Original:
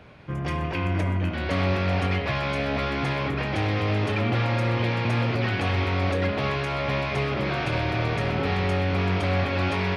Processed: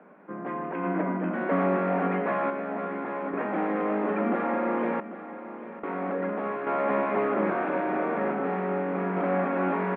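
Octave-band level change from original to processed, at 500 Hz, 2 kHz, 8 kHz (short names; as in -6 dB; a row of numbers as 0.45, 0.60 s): +1.0 dB, -6.0 dB, n/a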